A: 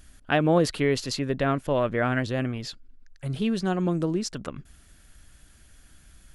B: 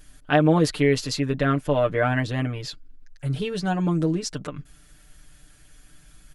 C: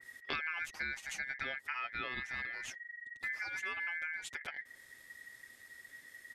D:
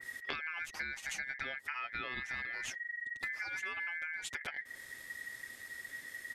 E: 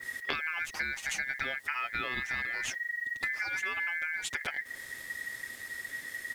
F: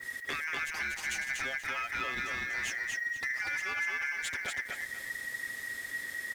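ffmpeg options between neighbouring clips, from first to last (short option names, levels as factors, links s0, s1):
-af "aecho=1:1:6.7:0.79"
-af "acompressor=threshold=0.0282:ratio=5,aeval=exprs='val(0)*sin(2*PI*1900*n/s)':c=same,adynamicequalizer=threshold=0.00501:dfrequency=2500:dqfactor=0.7:tfrequency=2500:tqfactor=0.7:attack=5:release=100:ratio=0.375:range=2:mode=cutabove:tftype=highshelf,volume=0.708"
-af "acompressor=threshold=0.00631:ratio=6,volume=2.37"
-af "acrusher=bits=10:mix=0:aa=0.000001,volume=2"
-af "asoftclip=type=tanh:threshold=0.0398,aecho=1:1:241|482|723|964:0.668|0.18|0.0487|0.0132"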